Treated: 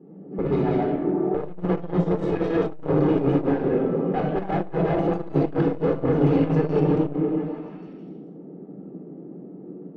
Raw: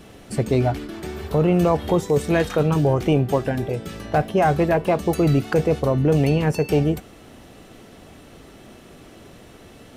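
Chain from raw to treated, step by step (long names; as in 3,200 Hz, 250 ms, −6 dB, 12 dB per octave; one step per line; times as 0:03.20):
delay that plays each chunk backwards 107 ms, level 0 dB
elliptic high-pass filter 160 Hz, stop band 40 dB
low-pass that shuts in the quiet parts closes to 350 Hz, open at −13 dBFS
high-shelf EQ 3,200 Hz +8 dB
in parallel at +1 dB: downward compressor 4 to 1, threshold −24 dBFS, peak gain reduction 11.5 dB
on the sum: hard clipping −15 dBFS, distortion −8 dB
head-to-tape spacing loss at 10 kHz 40 dB
on a send: echo through a band-pass that steps 162 ms, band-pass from 230 Hz, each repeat 0.7 octaves, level −2 dB
on the sum: rectangular room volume 2,800 cubic metres, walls furnished, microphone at 4 metres
saturating transformer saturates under 210 Hz
level −6 dB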